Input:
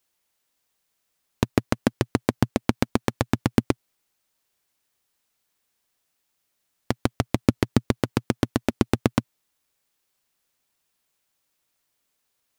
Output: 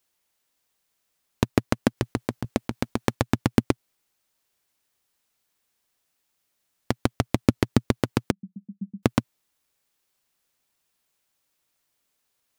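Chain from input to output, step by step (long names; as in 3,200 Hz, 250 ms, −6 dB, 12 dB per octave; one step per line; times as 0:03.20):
0:01.97–0:03.15: compressor whose output falls as the input rises −22 dBFS, ratio −0.5
0:08.31–0:09.03: flat-topped band-pass 190 Hz, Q 7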